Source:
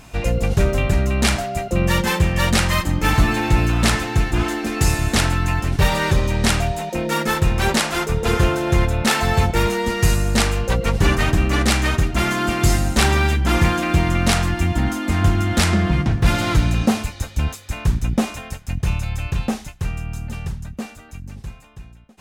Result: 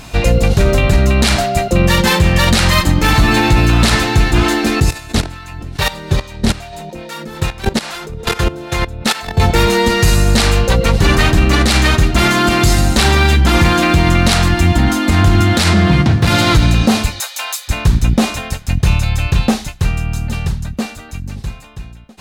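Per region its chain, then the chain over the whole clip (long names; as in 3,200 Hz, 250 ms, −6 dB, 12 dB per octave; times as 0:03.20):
0:04.80–0:09.40: output level in coarse steps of 17 dB + two-band tremolo in antiphase 2.4 Hz, crossover 570 Hz
0:15.40–0:16.46: hard clipping −8 dBFS + high-pass filter 70 Hz 24 dB per octave
0:17.20–0:17.68: high-pass filter 700 Hz 24 dB per octave + high-shelf EQ 7,700 Hz +9.5 dB
whole clip: parametric band 4,100 Hz +6 dB 0.54 octaves; boost into a limiter +10 dB; level −1 dB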